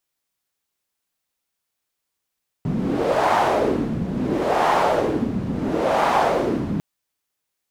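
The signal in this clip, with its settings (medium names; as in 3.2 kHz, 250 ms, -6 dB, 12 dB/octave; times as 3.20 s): wind-like swept noise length 4.15 s, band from 180 Hz, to 850 Hz, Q 2.5, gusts 3, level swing 6 dB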